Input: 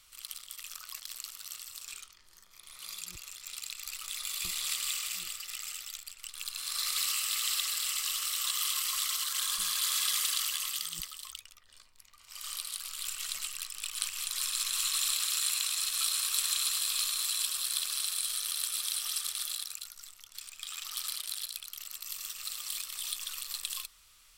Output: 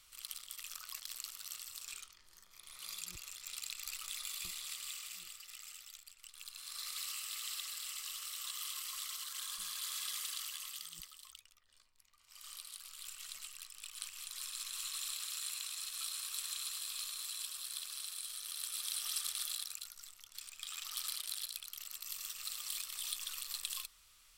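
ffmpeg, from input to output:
ffmpeg -i in.wav -af "volume=4dB,afade=type=out:start_time=3.91:duration=0.74:silence=0.398107,afade=type=in:start_time=18.41:duration=0.78:silence=0.446684" out.wav

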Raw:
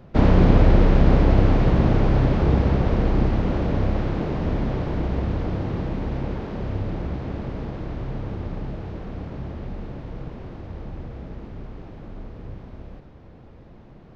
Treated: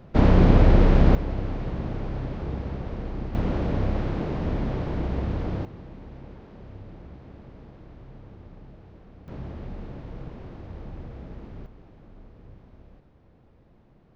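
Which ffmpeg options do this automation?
ffmpeg -i in.wav -af "asetnsamples=nb_out_samples=441:pad=0,asendcmd='1.15 volume volume -12.5dB;3.35 volume volume -3dB;5.65 volume volume -15.5dB;9.28 volume volume -4dB;11.66 volume volume -11dB',volume=-1dB" out.wav

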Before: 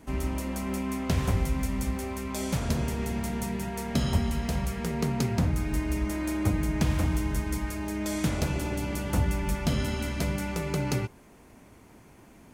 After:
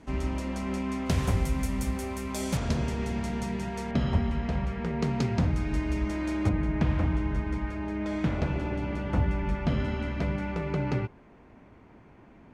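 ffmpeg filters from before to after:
ffmpeg -i in.wav -af "asetnsamples=nb_out_samples=441:pad=0,asendcmd='1.06 lowpass f 12000;2.57 lowpass f 6000;3.91 lowpass f 2600;5.02 lowpass f 4900;6.49 lowpass f 2400',lowpass=5800" out.wav

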